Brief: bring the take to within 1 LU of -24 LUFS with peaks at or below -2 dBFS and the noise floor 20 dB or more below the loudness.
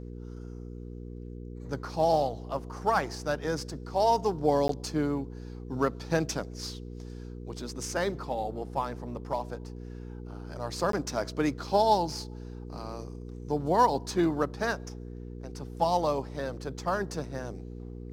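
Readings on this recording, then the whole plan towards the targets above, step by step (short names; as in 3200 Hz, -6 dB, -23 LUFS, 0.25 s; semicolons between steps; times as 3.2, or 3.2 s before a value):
dropouts 2; longest dropout 13 ms; hum 60 Hz; harmonics up to 480 Hz; hum level -39 dBFS; loudness -30.0 LUFS; peak -10.0 dBFS; loudness target -24.0 LUFS
-> interpolate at 4.68/10.92, 13 ms; de-hum 60 Hz, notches 8; gain +6 dB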